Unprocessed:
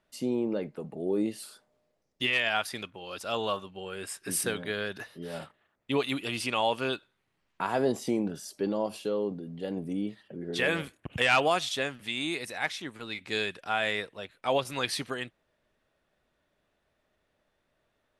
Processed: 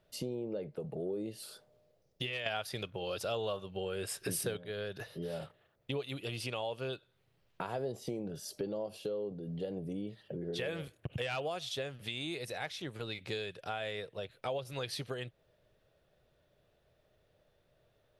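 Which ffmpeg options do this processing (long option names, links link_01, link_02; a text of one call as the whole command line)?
ffmpeg -i in.wav -filter_complex "[0:a]asplit=3[link_01][link_02][link_03];[link_01]atrim=end=2.462[link_04];[link_02]atrim=start=2.458:end=4.572,asetpts=PTS-STARTPTS,volume=9.5dB[link_05];[link_03]atrim=start=4.568[link_06];[link_04][link_05]acrossfade=duration=0.004:curve1=hsin:curve2=hsin[link_07];[link_07][link_06]acrossfade=duration=0.004:curve1=hsin:curve2=hsin,equalizer=frequency=125:width_type=o:width=1:gain=7,equalizer=frequency=250:width_type=o:width=1:gain=-9,equalizer=frequency=500:width_type=o:width=1:gain=5,equalizer=frequency=1000:width_type=o:width=1:gain=-7,equalizer=frequency=2000:width_type=o:width=1:gain=-6,equalizer=frequency=8000:width_type=o:width=1:gain=-7,acompressor=threshold=-42dB:ratio=4,volume=5dB" out.wav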